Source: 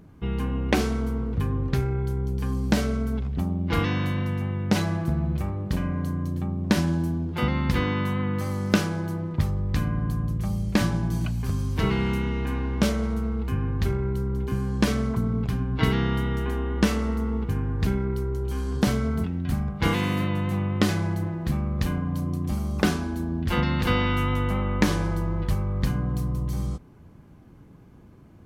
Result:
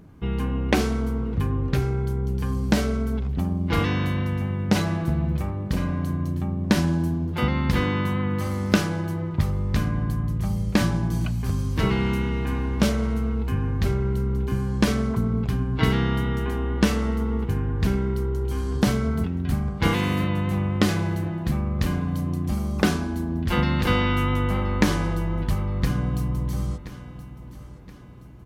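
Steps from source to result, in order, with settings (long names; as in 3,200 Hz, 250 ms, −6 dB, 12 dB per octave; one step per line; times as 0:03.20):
repeating echo 1,023 ms, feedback 42%, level −16 dB
level +1.5 dB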